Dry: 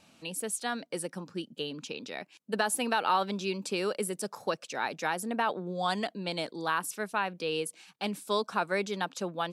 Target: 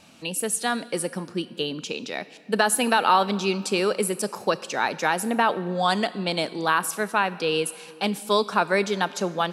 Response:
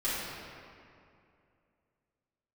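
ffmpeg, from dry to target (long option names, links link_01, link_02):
-filter_complex "[0:a]asplit=2[link_01][link_02];[1:a]atrim=start_sample=2205,highshelf=frequency=4400:gain=9.5,adelay=30[link_03];[link_02][link_03]afir=irnorm=-1:irlink=0,volume=-26dB[link_04];[link_01][link_04]amix=inputs=2:normalize=0,volume=8dB"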